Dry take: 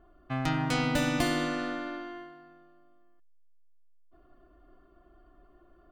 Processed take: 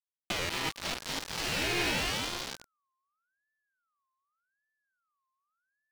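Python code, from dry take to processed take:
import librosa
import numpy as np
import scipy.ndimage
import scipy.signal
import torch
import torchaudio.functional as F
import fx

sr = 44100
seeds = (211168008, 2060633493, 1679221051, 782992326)

y = fx.low_shelf_res(x, sr, hz=500.0, db=-8.5, q=1.5)
y = fx.rev_double_slope(y, sr, seeds[0], early_s=0.4, late_s=4.0, knee_db=-19, drr_db=8.5)
y = fx.over_compress(y, sr, threshold_db=-37.0, ratio=-0.5)
y = 10.0 ** (-30.5 / 20.0) * np.tanh(y / 10.0 ** (-30.5 / 20.0))
y = fx.echo_feedback(y, sr, ms=551, feedback_pct=39, wet_db=-8)
y = fx.quant_companded(y, sr, bits=2)
y = fx.peak_eq(y, sr, hz=2900.0, db=11.0, octaves=2.9)
y = fx.backlash(y, sr, play_db=-50.5)
y = fx.buffer_glitch(y, sr, at_s=(0.39,), block=512, repeats=8)
y = fx.ring_lfo(y, sr, carrier_hz=1400.0, swing_pct=25, hz=0.85)
y = y * librosa.db_to_amplitude(-6.0)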